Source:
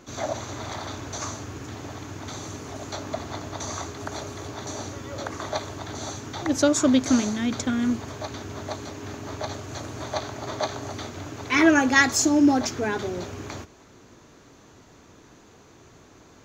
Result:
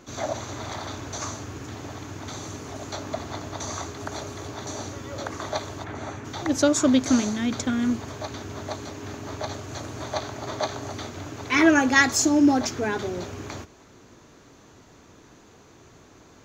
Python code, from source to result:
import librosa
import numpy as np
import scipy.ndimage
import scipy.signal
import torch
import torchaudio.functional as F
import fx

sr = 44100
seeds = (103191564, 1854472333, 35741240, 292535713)

y = fx.high_shelf_res(x, sr, hz=3100.0, db=-10.0, q=1.5, at=(5.83, 6.24), fade=0.02)